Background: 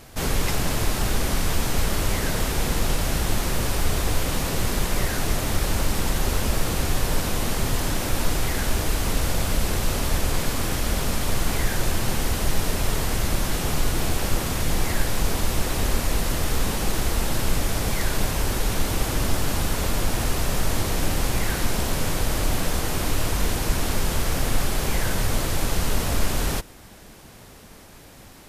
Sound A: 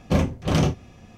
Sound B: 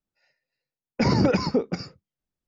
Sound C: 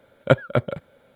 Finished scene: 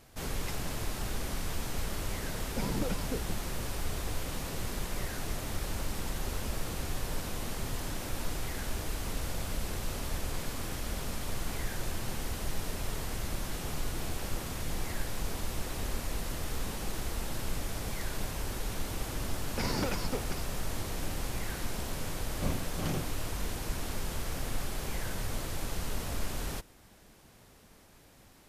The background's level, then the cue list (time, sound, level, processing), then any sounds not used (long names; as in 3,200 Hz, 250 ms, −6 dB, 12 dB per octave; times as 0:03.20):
background −12 dB
0:01.57: mix in B −14.5 dB + adaptive Wiener filter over 25 samples
0:18.58: mix in B −13.5 dB + compressing power law on the bin magnitudes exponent 0.59
0:22.31: mix in A −14.5 dB
not used: C